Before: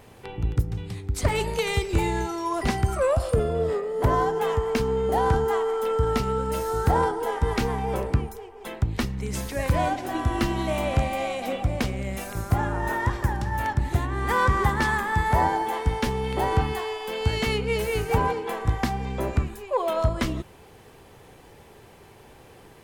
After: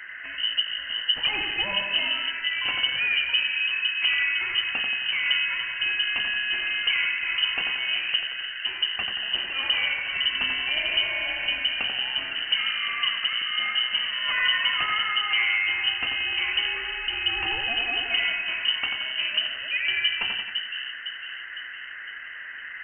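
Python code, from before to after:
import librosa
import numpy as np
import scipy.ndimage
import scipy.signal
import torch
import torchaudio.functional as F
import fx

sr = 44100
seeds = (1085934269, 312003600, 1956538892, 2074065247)

p1 = fx.dmg_noise_band(x, sr, seeds[0], low_hz=910.0, high_hz=1500.0, level_db=-37.0)
p2 = 10.0 ** (-19.0 / 20.0) * np.tanh(p1 / 10.0 ** (-19.0 / 20.0))
p3 = p1 + F.gain(torch.from_numpy(p2), -6.5).numpy()
p4 = fx.echo_split(p3, sr, split_hz=310.0, low_ms=506, high_ms=89, feedback_pct=52, wet_db=-4.5)
p5 = np.repeat(p4[::4], 4)[:len(p4)]
p6 = fx.freq_invert(p5, sr, carrier_hz=3000)
y = F.gain(torch.from_numpy(p6), -6.5).numpy()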